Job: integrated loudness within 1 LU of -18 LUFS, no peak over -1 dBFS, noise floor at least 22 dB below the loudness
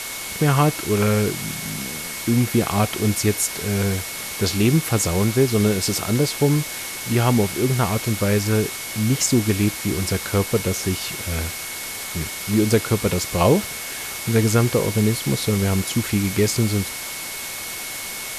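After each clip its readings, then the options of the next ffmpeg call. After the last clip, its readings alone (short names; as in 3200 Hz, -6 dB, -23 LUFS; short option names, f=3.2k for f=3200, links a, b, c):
steady tone 2200 Hz; tone level -36 dBFS; noise floor -31 dBFS; noise floor target -43 dBFS; loudness -21.0 LUFS; peak -3.5 dBFS; loudness target -18.0 LUFS
-> -af "bandreject=f=2.2k:w=30"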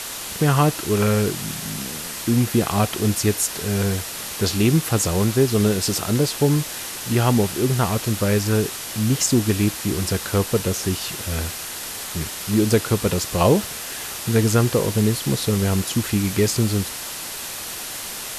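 steady tone none; noise floor -32 dBFS; noise floor target -44 dBFS
-> -af "afftdn=nr=12:nf=-32"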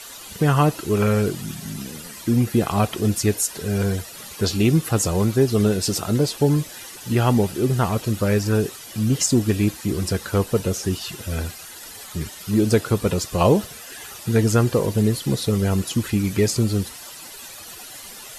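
noise floor -39 dBFS; noise floor target -44 dBFS
-> -af "afftdn=nr=6:nf=-39"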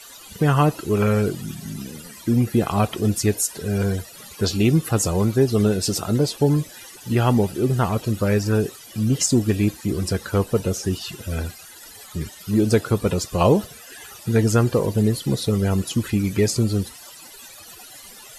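noise floor -43 dBFS; noise floor target -44 dBFS
-> -af "afftdn=nr=6:nf=-43"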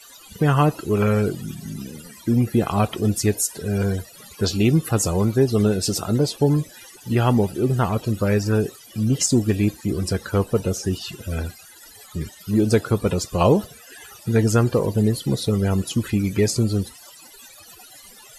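noise floor -46 dBFS; loudness -21.5 LUFS; peak -5.0 dBFS; loudness target -18.0 LUFS
-> -af "volume=3.5dB"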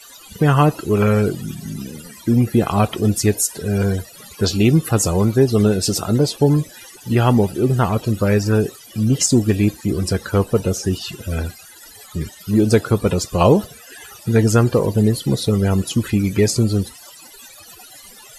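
loudness -18.0 LUFS; peak -1.5 dBFS; noise floor -42 dBFS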